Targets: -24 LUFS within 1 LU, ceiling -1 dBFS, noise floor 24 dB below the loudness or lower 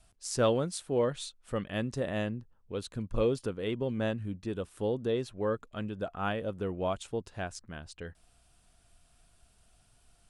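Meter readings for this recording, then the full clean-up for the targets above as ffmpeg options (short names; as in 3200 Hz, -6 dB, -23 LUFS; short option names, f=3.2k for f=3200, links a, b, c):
loudness -33.5 LUFS; peak -15.0 dBFS; loudness target -24.0 LUFS
-> -af "volume=9.5dB"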